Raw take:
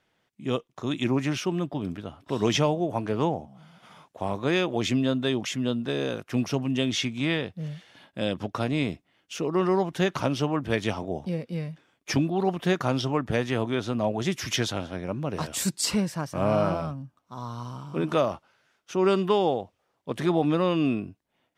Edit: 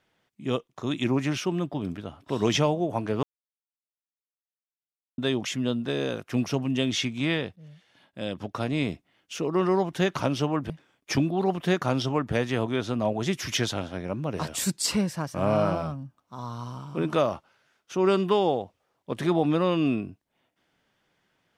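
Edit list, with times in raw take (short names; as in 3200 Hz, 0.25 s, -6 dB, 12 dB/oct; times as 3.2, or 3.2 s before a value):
3.23–5.18 mute
7.56–8.88 fade in, from -17 dB
10.7–11.69 cut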